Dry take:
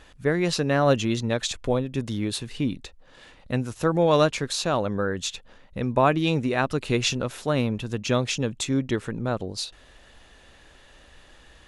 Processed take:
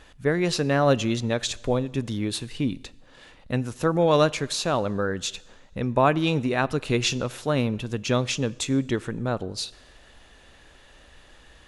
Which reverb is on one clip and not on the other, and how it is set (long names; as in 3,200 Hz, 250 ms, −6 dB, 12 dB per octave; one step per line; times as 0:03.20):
coupled-rooms reverb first 1 s, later 2.6 s, DRR 19.5 dB